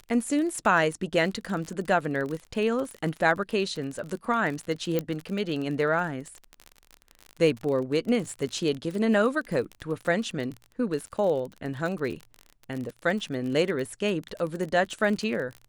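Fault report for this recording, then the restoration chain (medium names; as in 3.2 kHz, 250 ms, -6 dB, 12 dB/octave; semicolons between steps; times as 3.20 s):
crackle 35 per s -31 dBFS
4.99 s: pop -13 dBFS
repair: de-click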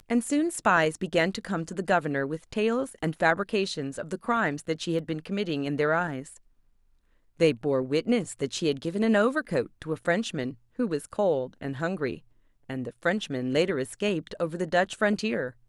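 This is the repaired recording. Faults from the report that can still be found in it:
4.99 s: pop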